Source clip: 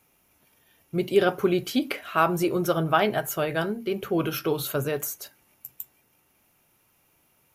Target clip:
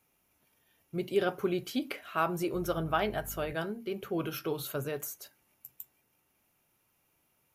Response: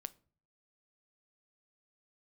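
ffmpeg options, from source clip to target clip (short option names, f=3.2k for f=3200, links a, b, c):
-filter_complex "[0:a]asettb=1/sr,asplit=3[a][b][c];[a]atrim=end=2.544[d];[b]atrim=start=2.54:end=3.53,asetpts=PTS-STARTPTS,afade=t=in:d=0.004:c=qsin,afade=t=out:st=0.986:d=0.004:c=qsin,aeval=exprs='val(0)+0.0141*(sin(2*PI*50*n/s)+sin(2*PI*2*50*n/s)/2+sin(2*PI*3*50*n/s)/3+sin(2*PI*4*50*n/s)/4+sin(2*PI*5*50*n/s)/5)':c=same[e];[c]atrim=start=3.526[f];[d][e]acrossfade=d=0.004:c1=hsin:c2=qsin[g];[g][f]acrossfade=d=0.004:c1=qsin:c2=hsin,volume=-8dB"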